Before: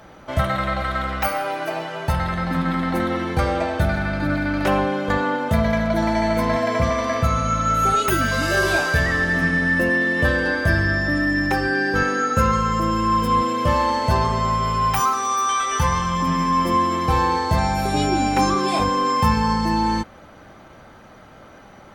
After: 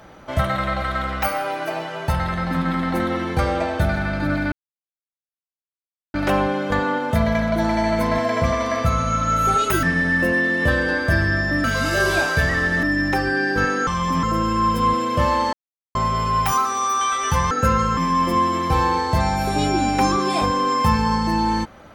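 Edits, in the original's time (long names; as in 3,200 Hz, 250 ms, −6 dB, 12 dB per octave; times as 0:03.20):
0:04.52: splice in silence 1.62 s
0:08.21–0:09.40: move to 0:11.21
0:12.25–0:12.71: swap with 0:15.99–0:16.35
0:14.01–0:14.43: silence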